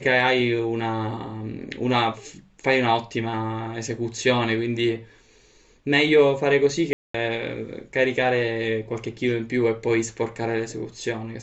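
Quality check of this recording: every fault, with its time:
6.93–7.14 gap 0.214 s

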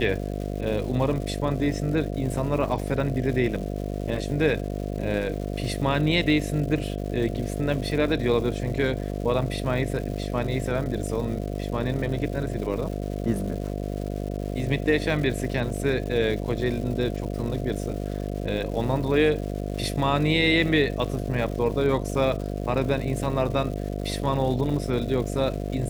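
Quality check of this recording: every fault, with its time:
buzz 50 Hz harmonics 14 -30 dBFS
crackle 370/s -35 dBFS

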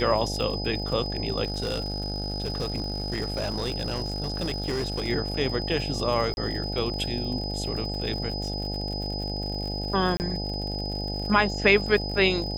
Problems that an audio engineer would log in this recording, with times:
buzz 50 Hz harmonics 17 -32 dBFS
crackle 75/s -34 dBFS
tone 5000 Hz -33 dBFS
1.44–5.09 clipped -23.5 dBFS
6.34–6.37 gap 31 ms
10.17–10.2 gap 29 ms

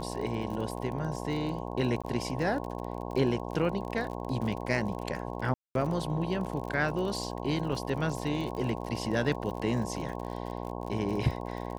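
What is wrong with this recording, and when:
buzz 60 Hz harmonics 18 -37 dBFS
crackle 44/s -36 dBFS
2.02–2.04 gap 16 ms
5.54–5.75 gap 0.212 s
7.72–7.73 gap 5.5 ms

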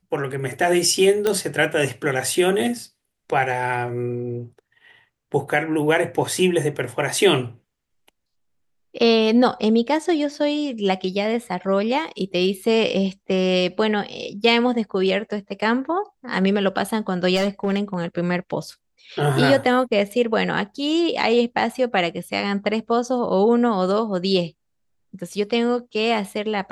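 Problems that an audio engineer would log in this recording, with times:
1.27 pop -7 dBFS
17.35–18.04 clipped -16.5 dBFS

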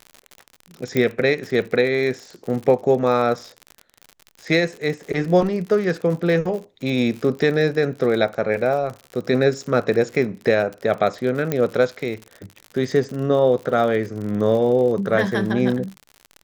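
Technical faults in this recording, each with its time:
crackle 64/s -29 dBFS
0.97 pop -8 dBFS
11.52 pop -8 dBFS

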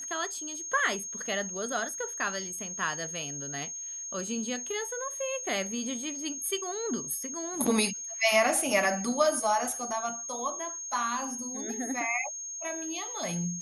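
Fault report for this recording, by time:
tone 6500 Hz -36 dBFS

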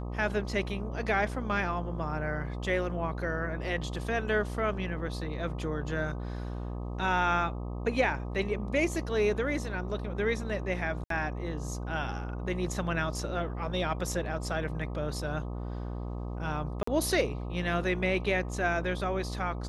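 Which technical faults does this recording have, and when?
buzz 60 Hz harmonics 21 -36 dBFS
11.04–11.1 gap 63 ms
16.83–16.87 gap 44 ms

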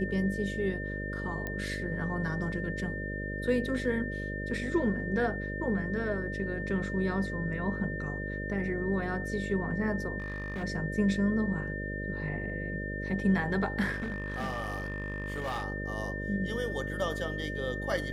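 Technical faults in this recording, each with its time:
buzz 50 Hz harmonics 12 -37 dBFS
tone 1800 Hz -38 dBFS
1.47 pop -21 dBFS
10.18–10.64 clipped -32 dBFS
13.92–15.64 clipped -30 dBFS

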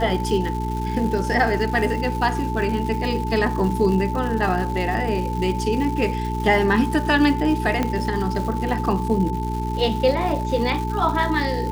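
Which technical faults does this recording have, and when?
crackle 330/s -29 dBFS
hum 60 Hz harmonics 7 -26 dBFS
tone 880 Hz -28 dBFS
7.83 pop -9 dBFS

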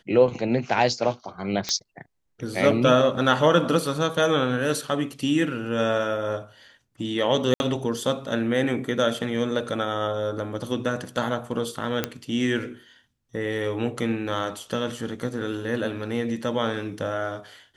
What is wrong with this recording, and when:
1.69 pop -10 dBFS
7.54–7.6 gap 61 ms
12.04 pop -8 dBFS

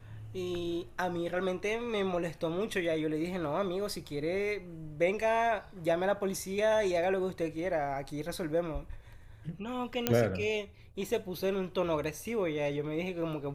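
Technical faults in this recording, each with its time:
10.07 pop -10 dBFS

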